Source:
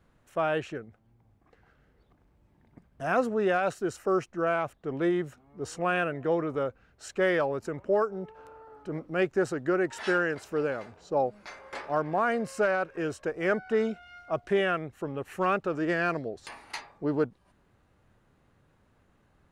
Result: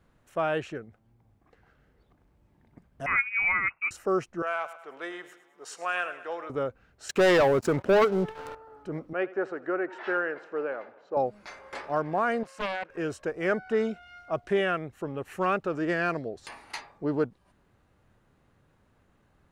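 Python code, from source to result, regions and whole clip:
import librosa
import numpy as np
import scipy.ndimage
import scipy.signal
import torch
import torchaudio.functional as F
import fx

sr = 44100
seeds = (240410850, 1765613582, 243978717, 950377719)

y = fx.chain(x, sr, fx.transient(attack_db=-1, sustain_db=-9),
    fx.freq_invert(carrier_hz=2700), at=(3.06, 3.91))
y = fx.chain(y, sr, fx.highpass(hz=830.0, slope=12),
    fx.echo_feedback(ms=106, feedback_pct=48, wet_db=-14.0), at=(4.42, 6.5))
y = fx.chain(y, sr, fx.highpass(hz=72.0, slope=12),
    fx.leveller(passes=3), at=(7.09, 8.55))
y = fx.chain(y, sr, fx.bandpass_edges(low_hz=410.0, high_hz=2000.0),
    fx.echo_feedback(ms=84, feedback_pct=56, wet_db=-19), at=(9.13, 11.17))
y = fx.chain(y, sr, fx.highpass(hz=930.0, slope=6),
    fx.high_shelf(hz=3100.0, db=-11.0),
    fx.doppler_dist(depth_ms=0.92), at=(12.43, 12.9))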